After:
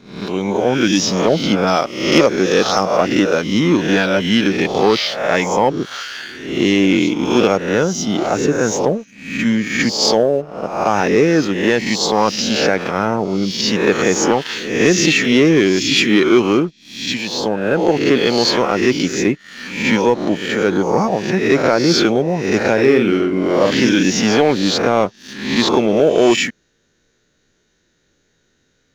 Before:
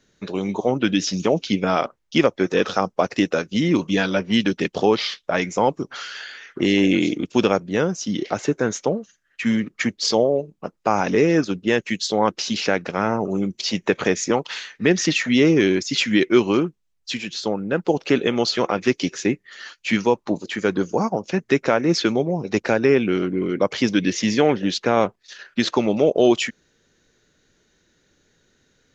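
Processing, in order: spectral swells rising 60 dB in 0.71 s; 1.67–2.97 band shelf 5200 Hz +8.5 dB 1 oct; sample leveller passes 1; 22.73–24.03 doubler 47 ms -5.5 dB

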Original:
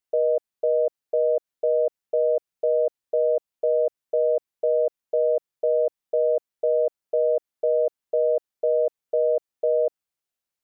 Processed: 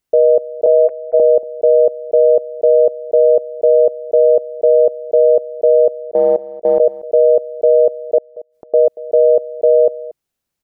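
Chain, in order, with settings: 0.66–1.2 sine-wave speech; low shelf 370 Hz +11 dB; 6.01–6.8 level quantiser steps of 17 dB; 8.18–8.74 flipped gate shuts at -30 dBFS, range -34 dB; echo 0.233 s -18 dB; gain +7.5 dB

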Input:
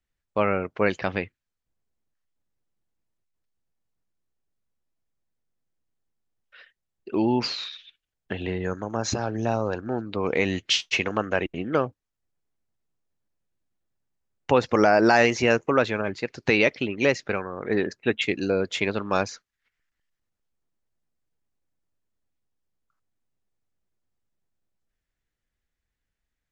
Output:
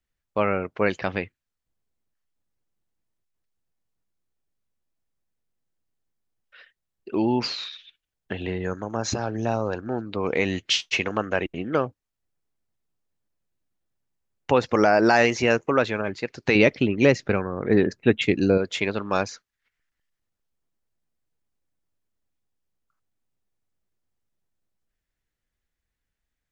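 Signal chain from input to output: 16.55–18.58 low shelf 370 Hz +10 dB

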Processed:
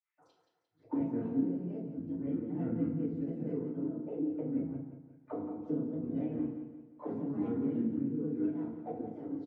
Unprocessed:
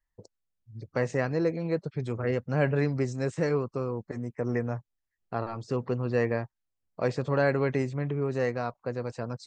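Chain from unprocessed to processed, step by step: bell 2700 Hz +5.5 dB 1 oct; reverse; upward compressor, threshold -38 dBFS; reverse; harmoniser -4 st -12 dB, -3 st -15 dB; vibrato 0.31 Hz 64 cents; grains 0.173 s, spray 36 ms, pitch spread up and down by 7 st; auto-wah 240–2200 Hz, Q 6.3, down, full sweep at -32.5 dBFS; on a send: feedback echo 0.175 s, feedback 42%, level -9 dB; on the sum: FDN reverb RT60 0.6 s, low-frequency decay 0.9×, high-frequency decay 0.7×, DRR -9.5 dB; ending taper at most 210 dB/s; gain -3 dB

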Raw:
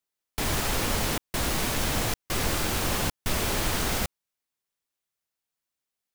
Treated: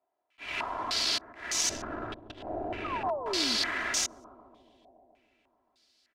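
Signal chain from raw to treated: 1.69–3.09 median filter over 41 samples; sine folder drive 12 dB, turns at -13 dBFS; low shelf 69 Hz -8.5 dB; limiter -25.5 dBFS, peak gain reduction 16 dB; tilt +2.5 dB/oct; 2.84–3.57 painted sound fall 210–1300 Hz -33 dBFS; auto swell 0.233 s; comb 3 ms, depth 55%; analogue delay 0.142 s, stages 1024, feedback 75%, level -13 dB; stepped low-pass 3.3 Hz 730–6200 Hz; gain -5 dB

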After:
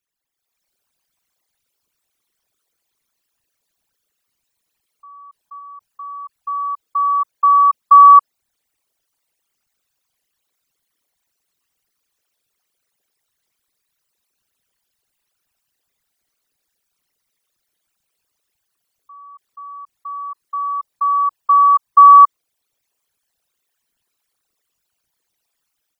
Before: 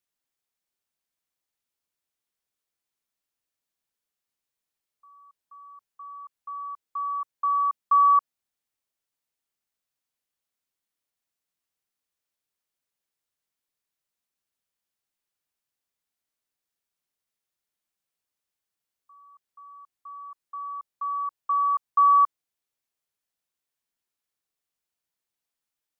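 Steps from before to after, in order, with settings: formant sharpening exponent 3; 5.58–6.36 dynamic EQ 1200 Hz, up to -3 dB, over -51 dBFS, Q 3.9; AGC gain up to 10.5 dB; gain +2.5 dB

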